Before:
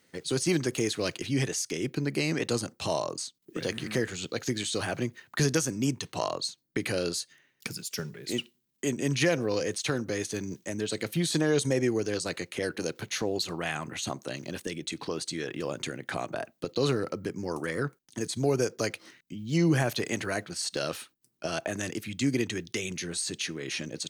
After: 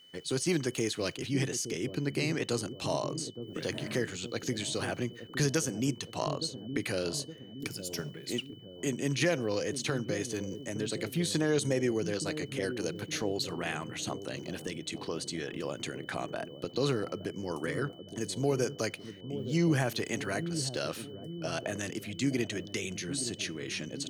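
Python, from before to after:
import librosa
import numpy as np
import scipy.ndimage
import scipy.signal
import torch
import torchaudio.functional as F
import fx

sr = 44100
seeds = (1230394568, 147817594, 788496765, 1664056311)

y = fx.echo_wet_lowpass(x, sr, ms=867, feedback_pct=53, hz=440.0, wet_db=-8.0)
y = y + 10.0 ** (-52.0 / 20.0) * np.sin(2.0 * np.pi * 3000.0 * np.arange(len(y)) / sr)
y = F.gain(torch.from_numpy(y), -3.0).numpy()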